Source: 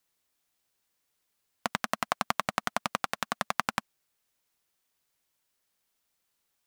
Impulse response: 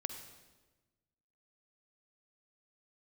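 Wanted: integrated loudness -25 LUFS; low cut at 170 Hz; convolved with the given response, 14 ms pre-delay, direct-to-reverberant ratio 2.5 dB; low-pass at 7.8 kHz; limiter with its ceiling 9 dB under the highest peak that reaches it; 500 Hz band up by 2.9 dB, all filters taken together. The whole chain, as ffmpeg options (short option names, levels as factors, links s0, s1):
-filter_complex "[0:a]highpass=170,lowpass=7800,equalizer=f=500:t=o:g=4,alimiter=limit=0.211:level=0:latency=1,asplit=2[s0][s1];[1:a]atrim=start_sample=2205,adelay=14[s2];[s1][s2]afir=irnorm=-1:irlink=0,volume=0.794[s3];[s0][s3]amix=inputs=2:normalize=0,volume=3.76"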